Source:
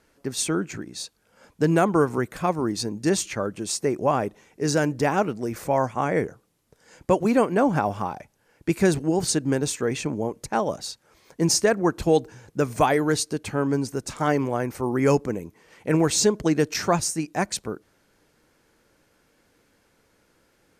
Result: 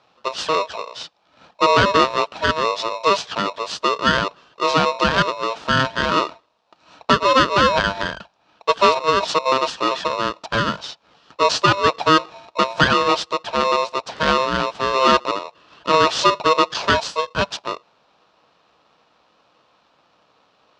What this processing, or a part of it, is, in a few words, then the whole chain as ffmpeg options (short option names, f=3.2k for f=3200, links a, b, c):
ring modulator pedal into a guitar cabinet: -af "aeval=exprs='val(0)*sgn(sin(2*PI*790*n/s))':c=same,highpass=79,equalizer=f=92:t=q:w=4:g=-9,equalizer=f=250:t=q:w=4:g=-5,equalizer=f=360:t=q:w=4:g=-6,equalizer=f=2.1k:t=q:w=4:g=-10,lowpass=f=4.6k:w=0.5412,lowpass=f=4.6k:w=1.3066,volume=6.5dB"